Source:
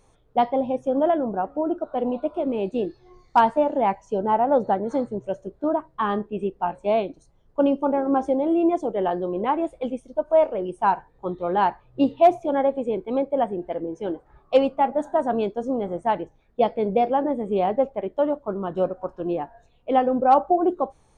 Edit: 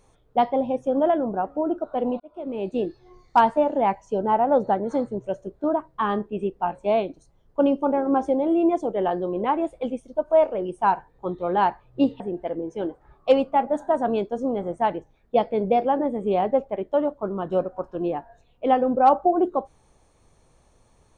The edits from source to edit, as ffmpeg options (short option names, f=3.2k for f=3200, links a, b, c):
-filter_complex "[0:a]asplit=3[a][b][c];[a]atrim=end=2.2,asetpts=PTS-STARTPTS,afade=t=out:st=2.196:d=0.004:c=hsin[d];[b]atrim=start=2.2:end=12.202,asetpts=PTS-STARTPTS,afade=t=in:d=0.57[e];[c]atrim=start=13.448[f];[d][e]concat=n=2:v=0:a=1[g];[g][f]acrossfade=d=0.004:c1=hsin:c2=hsin"